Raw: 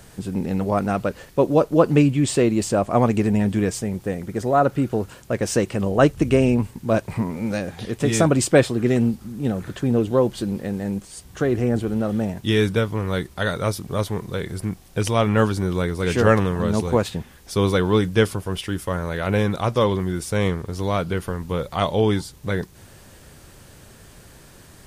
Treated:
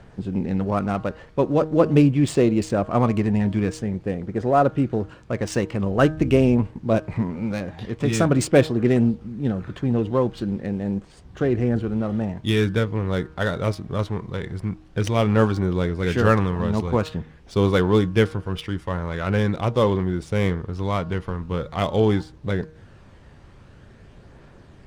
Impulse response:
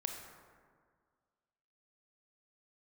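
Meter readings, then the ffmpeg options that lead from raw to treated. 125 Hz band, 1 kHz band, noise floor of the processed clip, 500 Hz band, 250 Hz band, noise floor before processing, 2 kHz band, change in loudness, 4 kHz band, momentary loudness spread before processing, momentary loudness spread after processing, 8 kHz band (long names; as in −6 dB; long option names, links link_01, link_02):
+0.5 dB, −1.5 dB, −48 dBFS, −1.5 dB, −0.5 dB, −47 dBFS, −2.0 dB, −1.0 dB, −3.0 dB, 10 LU, 10 LU, −7.0 dB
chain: -af "bandreject=frequency=156.5:width_type=h:width=4,bandreject=frequency=313:width_type=h:width=4,bandreject=frequency=469.5:width_type=h:width=4,bandreject=frequency=626:width_type=h:width=4,bandreject=frequency=782.5:width_type=h:width=4,bandreject=frequency=939:width_type=h:width=4,bandreject=frequency=1095.5:width_type=h:width=4,bandreject=frequency=1252:width_type=h:width=4,bandreject=frequency=1408.5:width_type=h:width=4,bandreject=frequency=1565:width_type=h:width=4,bandreject=frequency=1721.5:width_type=h:width=4,aphaser=in_gain=1:out_gain=1:delay=1.1:decay=0.24:speed=0.45:type=triangular,adynamicsmooth=sensitivity=3.5:basefreq=2800,volume=-1.5dB"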